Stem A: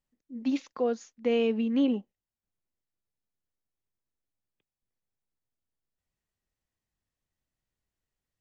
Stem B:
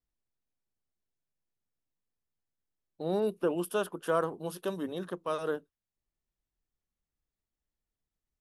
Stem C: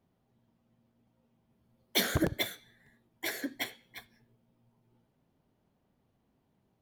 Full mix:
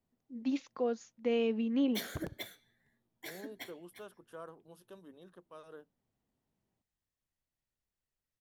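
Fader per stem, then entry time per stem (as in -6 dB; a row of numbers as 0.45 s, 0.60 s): -5.0 dB, -19.0 dB, -11.0 dB; 0.00 s, 0.25 s, 0.00 s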